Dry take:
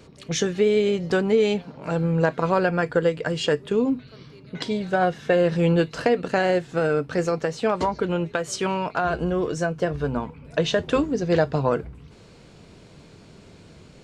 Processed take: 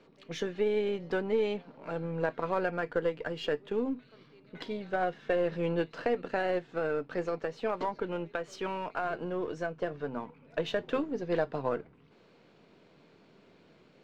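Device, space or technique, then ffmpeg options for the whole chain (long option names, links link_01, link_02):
crystal radio: -af "highpass=220,lowpass=3400,aeval=exprs='if(lt(val(0),0),0.708*val(0),val(0))':channel_layout=same,volume=-7.5dB"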